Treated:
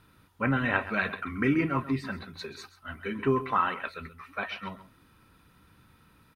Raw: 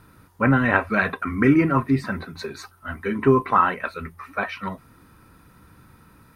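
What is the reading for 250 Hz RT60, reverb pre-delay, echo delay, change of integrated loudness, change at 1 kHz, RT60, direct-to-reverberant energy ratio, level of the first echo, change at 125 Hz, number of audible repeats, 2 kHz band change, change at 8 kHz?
none, none, 0.132 s, -8.5 dB, -8.0 dB, none, none, -14.5 dB, -9.0 dB, 1, -6.5 dB, n/a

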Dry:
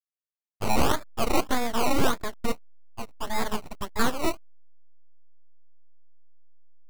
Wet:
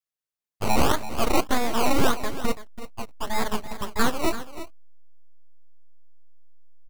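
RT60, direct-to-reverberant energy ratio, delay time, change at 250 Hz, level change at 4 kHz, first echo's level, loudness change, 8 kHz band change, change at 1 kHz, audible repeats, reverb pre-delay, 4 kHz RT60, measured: none, none, 0.334 s, +2.5 dB, +2.0 dB, -13.0 dB, +2.0 dB, +2.0 dB, +2.0 dB, 1, none, none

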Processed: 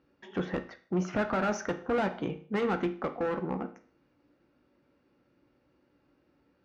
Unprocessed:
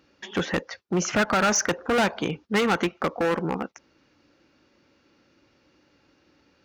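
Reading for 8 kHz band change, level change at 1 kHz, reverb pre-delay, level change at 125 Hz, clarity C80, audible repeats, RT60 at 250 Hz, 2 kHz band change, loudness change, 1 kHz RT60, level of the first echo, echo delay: -20.5 dB, -7.5 dB, 8 ms, -5.0 dB, 18.0 dB, none, 0.45 s, -10.5 dB, -7.5 dB, 0.45 s, none, none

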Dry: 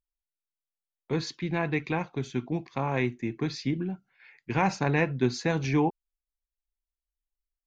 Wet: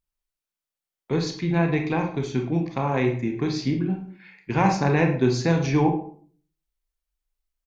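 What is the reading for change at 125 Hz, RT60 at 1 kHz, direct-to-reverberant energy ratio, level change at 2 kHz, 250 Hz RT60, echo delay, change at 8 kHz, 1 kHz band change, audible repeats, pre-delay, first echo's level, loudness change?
+6.5 dB, 0.45 s, 3.0 dB, +2.0 dB, 0.60 s, 0.106 s, n/a, +5.0 dB, 1, 26 ms, -16.0 dB, +5.5 dB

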